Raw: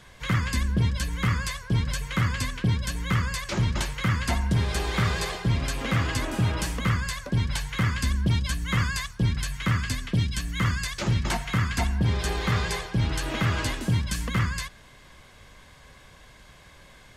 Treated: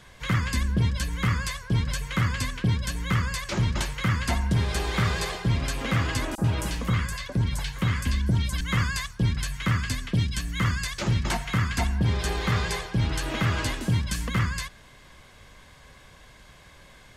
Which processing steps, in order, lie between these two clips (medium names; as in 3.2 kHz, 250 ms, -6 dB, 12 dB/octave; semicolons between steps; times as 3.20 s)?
6.35–8.61 s: three bands offset in time highs, lows, mids 30/90 ms, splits 1.5/5.9 kHz